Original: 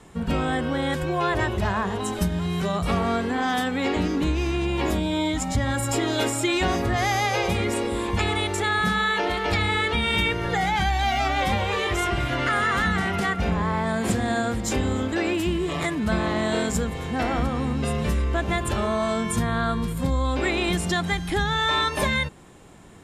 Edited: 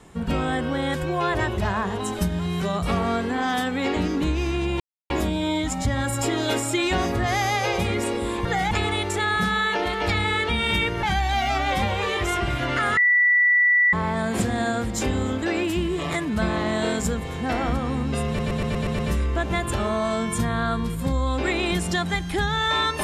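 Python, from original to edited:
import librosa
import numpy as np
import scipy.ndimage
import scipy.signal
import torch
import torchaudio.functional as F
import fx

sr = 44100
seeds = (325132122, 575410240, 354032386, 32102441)

y = fx.edit(x, sr, fx.insert_silence(at_s=4.8, length_s=0.3),
    fx.move(start_s=10.47, length_s=0.26, to_s=8.15),
    fx.bleep(start_s=12.67, length_s=0.96, hz=1960.0, db=-14.5),
    fx.stutter(start_s=17.97, slice_s=0.12, count=7), tone=tone)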